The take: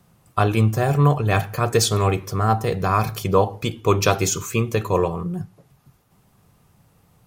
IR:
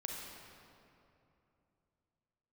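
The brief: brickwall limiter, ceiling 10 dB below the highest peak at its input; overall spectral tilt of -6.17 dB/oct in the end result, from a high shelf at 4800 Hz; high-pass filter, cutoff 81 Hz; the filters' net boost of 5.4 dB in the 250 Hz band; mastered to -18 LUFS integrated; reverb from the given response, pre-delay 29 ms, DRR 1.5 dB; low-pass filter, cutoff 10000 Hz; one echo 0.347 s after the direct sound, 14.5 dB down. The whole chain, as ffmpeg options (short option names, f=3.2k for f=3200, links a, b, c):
-filter_complex "[0:a]highpass=81,lowpass=10k,equalizer=f=250:t=o:g=8,highshelf=f=4.8k:g=-6.5,alimiter=limit=-12dB:level=0:latency=1,aecho=1:1:347:0.188,asplit=2[a][b];[1:a]atrim=start_sample=2205,adelay=29[c];[b][c]afir=irnorm=-1:irlink=0,volume=-1.5dB[d];[a][d]amix=inputs=2:normalize=0,volume=3dB"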